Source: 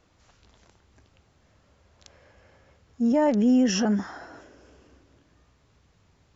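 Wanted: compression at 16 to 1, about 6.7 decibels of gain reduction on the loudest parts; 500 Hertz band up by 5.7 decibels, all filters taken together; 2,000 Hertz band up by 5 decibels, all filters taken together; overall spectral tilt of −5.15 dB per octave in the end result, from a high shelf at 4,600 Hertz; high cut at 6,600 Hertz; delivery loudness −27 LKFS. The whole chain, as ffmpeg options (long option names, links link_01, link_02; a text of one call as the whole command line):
ffmpeg -i in.wav -af "lowpass=6600,equalizer=frequency=500:width_type=o:gain=6.5,equalizer=frequency=2000:width_type=o:gain=7,highshelf=frequency=4600:gain=-5,acompressor=threshold=-20dB:ratio=16,volume=-1dB" out.wav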